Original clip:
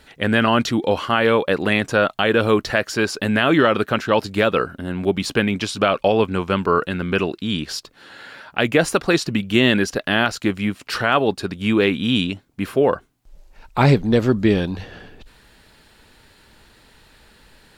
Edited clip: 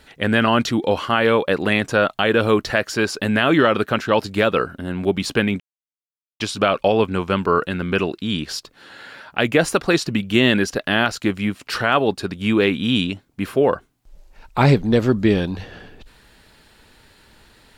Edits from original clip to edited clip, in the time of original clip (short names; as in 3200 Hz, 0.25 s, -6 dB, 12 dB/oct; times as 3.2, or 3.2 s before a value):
5.6 insert silence 0.80 s